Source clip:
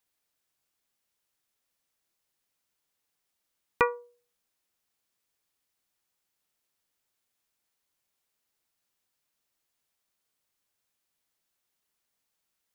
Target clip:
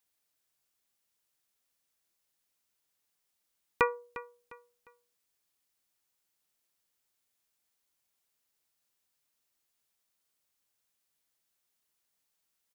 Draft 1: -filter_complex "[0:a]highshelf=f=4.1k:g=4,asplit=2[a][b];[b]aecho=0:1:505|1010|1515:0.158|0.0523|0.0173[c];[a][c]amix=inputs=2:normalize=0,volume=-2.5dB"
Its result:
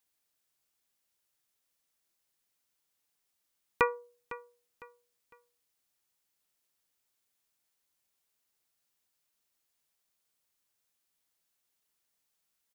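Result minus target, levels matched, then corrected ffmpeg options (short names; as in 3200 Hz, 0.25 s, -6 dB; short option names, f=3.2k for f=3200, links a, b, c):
echo 0.152 s late
-filter_complex "[0:a]highshelf=f=4.1k:g=4,asplit=2[a][b];[b]aecho=0:1:353|706|1059:0.158|0.0523|0.0173[c];[a][c]amix=inputs=2:normalize=0,volume=-2.5dB"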